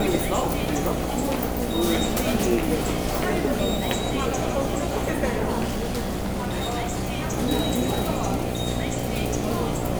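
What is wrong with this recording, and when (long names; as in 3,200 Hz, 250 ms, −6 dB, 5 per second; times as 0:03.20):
mains buzz 60 Hz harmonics 13 −29 dBFS
0:05.65–0:07.34: clipping −22 dBFS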